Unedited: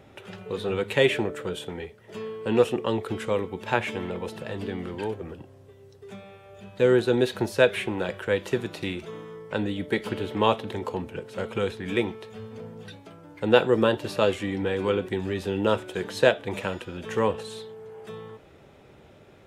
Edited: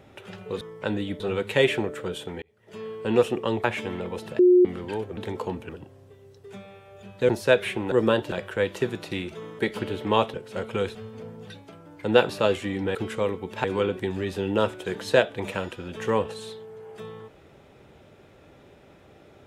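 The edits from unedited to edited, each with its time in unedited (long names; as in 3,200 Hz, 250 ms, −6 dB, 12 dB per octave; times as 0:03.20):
0:01.83–0:02.33: fade in
0:03.05–0:03.74: move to 0:14.73
0:04.49–0:04.75: beep over 360 Hz −12 dBFS
0:06.87–0:07.40: remove
0:09.30–0:09.89: move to 0:00.61
0:10.64–0:11.16: move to 0:05.27
0:11.77–0:12.33: remove
0:13.67–0:14.07: move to 0:08.03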